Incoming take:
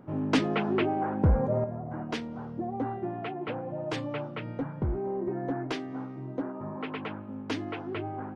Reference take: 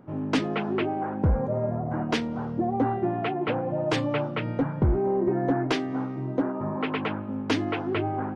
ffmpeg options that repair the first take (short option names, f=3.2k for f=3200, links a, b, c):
-af "asetnsamples=n=441:p=0,asendcmd='1.64 volume volume 7.5dB',volume=0dB"